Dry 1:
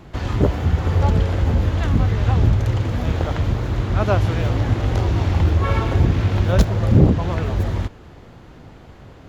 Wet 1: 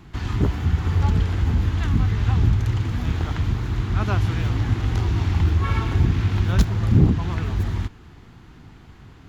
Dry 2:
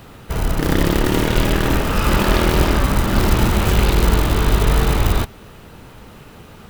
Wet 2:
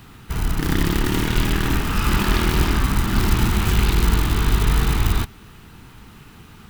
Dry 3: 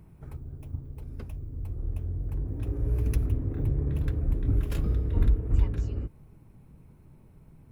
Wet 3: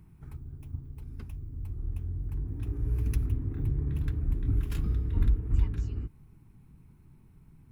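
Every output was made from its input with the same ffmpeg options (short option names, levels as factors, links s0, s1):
-af "equalizer=f=560:w=2.1:g=-14.5,volume=0.794"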